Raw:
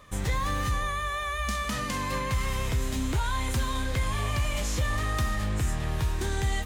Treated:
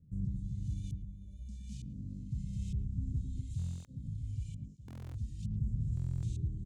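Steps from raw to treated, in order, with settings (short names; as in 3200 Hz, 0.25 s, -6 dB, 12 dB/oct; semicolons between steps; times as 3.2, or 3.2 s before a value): weighting filter D; echo 0.242 s -4 dB; limiter -23.5 dBFS, peak gain reduction 12 dB; LFO low-pass saw up 1.1 Hz 460–2600 Hz; elliptic band-stop 160–7700 Hz, stop band 80 dB; narrowing echo 0.113 s, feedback 65%, band-pass 310 Hz, level -3.5 dB; LFO notch sine 1.6 Hz 460–1500 Hz; stuck buffer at 3.57/4.86/5.95, samples 1024, times 11; 3.41–5.51 tape flanging out of phase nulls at 1.1 Hz, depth 6.4 ms; gain +6.5 dB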